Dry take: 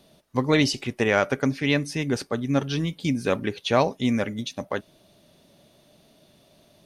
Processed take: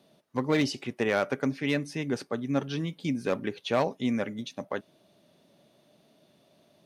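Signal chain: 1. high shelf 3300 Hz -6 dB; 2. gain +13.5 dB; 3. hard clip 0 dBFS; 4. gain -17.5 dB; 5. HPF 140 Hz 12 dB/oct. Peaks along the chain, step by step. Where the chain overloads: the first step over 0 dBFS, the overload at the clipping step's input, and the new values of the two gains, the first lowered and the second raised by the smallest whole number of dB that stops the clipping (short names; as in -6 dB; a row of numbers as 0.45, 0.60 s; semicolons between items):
-7.5, +6.0, 0.0, -17.5, -13.0 dBFS; step 2, 6.0 dB; step 2 +7.5 dB, step 4 -11.5 dB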